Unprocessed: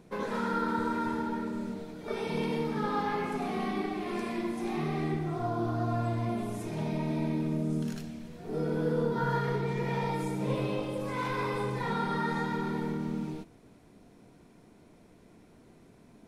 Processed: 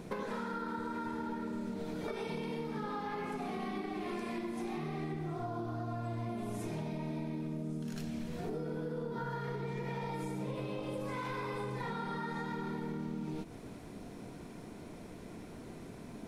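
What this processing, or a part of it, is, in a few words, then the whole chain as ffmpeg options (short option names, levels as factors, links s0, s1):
serial compression, peaks first: -af "acompressor=threshold=0.00891:ratio=6,acompressor=threshold=0.00501:ratio=2.5,volume=2.82"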